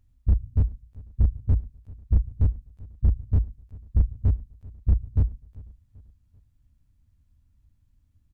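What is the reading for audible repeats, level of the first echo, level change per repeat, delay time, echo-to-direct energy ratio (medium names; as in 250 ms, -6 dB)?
2, -21.5 dB, -7.0 dB, 390 ms, -20.5 dB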